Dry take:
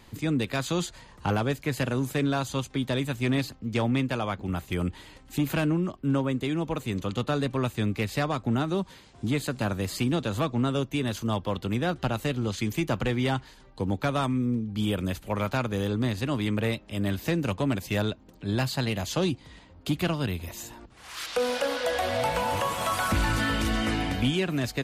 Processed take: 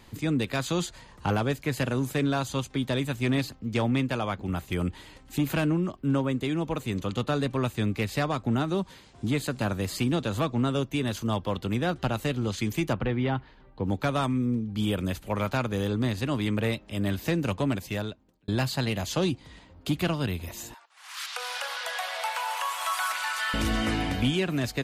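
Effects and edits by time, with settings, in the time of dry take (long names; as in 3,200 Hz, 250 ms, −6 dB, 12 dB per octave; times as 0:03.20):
0:12.93–0:13.85: high-frequency loss of the air 330 metres
0:17.65–0:18.48: fade out
0:20.74–0:23.54: high-pass filter 850 Hz 24 dB per octave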